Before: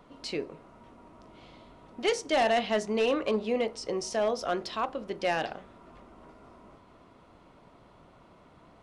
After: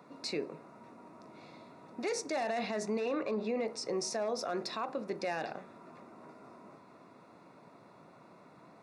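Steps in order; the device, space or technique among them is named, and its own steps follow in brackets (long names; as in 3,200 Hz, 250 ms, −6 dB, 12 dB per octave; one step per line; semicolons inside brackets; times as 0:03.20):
PA system with an anti-feedback notch (high-pass filter 130 Hz 24 dB per octave; Butterworth band-reject 3,100 Hz, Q 4.1; brickwall limiter −26 dBFS, peak gain reduction 10.5 dB)
0:03.00–0:03.66: high-frequency loss of the air 61 metres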